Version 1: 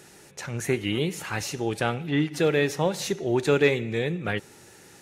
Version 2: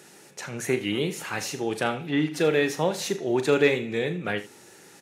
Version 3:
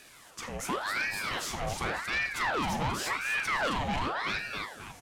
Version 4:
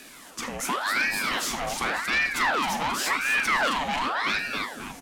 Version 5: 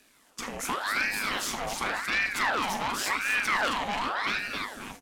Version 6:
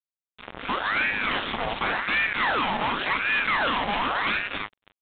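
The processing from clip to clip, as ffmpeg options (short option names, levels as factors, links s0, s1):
-filter_complex "[0:a]highpass=160,asplit=2[s0][s1];[s1]aecho=0:1:39|80:0.266|0.158[s2];[s0][s2]amix=inputs=2:normalize=0"
-filter_complex "[0:a]asplit=5[s0][s1][s2][s3][s4];[s1]adelay=266,afreqshift=76,volume=0.531[s5];[s2]adelay=532,afreqshift=152,volume=0.191[s6];[s3]adelay=798,afreqshift=228,volume=0.0692[s7];[s4]adelay=1064,afreqshift=304,volume=0.0248[s8];[s0][s5][s6][s7][s8]amix=inputs=5:normalize=0,asoftclip=type=tanh:threshold=0.0668,aeval=exprs='val(0)*sin(2*PI*1200*n/s+1200*0.75/0.9*sin(2*PI*0.9*n/s))':c=same"
-filter_complex "[0:a]equalizer=f=100:t=o:w=0.67:g=-11,equalizer=f=250:t=o:w=0.67:g=10,equalizer=f=16000:t=o:w=0.67:g=4,acrossover=split=650|1000[s0][s1][s2];[s0]acompressor=threshold=0.00794:ratio=6[s3];[s3][s1][s2]amix=inputs=3:normalize=0,volume=2.11"
-af "agate=range=0.251:threshold=0.01:ratio=16:detection=peak,tremolo=f=210:d=0.667"
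-af "dynaudnorm=f=120:g=9:m=2.37,acrusher=bits=3:mix=0:aa=0.5,aresample=8000,asoftclip=type=tanh:threshold=0.119,aresample=44100"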